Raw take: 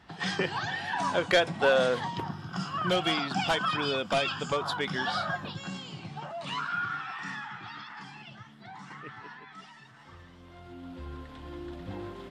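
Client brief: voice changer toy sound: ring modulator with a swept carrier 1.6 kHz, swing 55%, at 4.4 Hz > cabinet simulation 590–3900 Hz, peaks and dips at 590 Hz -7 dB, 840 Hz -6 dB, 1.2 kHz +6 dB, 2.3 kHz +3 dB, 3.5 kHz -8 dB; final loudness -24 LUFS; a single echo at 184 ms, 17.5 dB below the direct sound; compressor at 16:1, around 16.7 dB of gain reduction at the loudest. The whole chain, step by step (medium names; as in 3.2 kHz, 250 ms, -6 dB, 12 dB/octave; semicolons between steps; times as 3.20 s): compression 16:1, threshold -35 dBFS; delay 184 ms -17.5 dB; ring modulator with a swept carrier 1.6 kHz, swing 55%, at 4.4 Hz; cabinet simulation 590–3900 Hz, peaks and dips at 590 Hz -7 dB, 840 Hz -6 dB, 1.2 kHz +6 dB, 2.3 kHz +3 dB, 3.5 kHz -8 dB; trim +18.5 dB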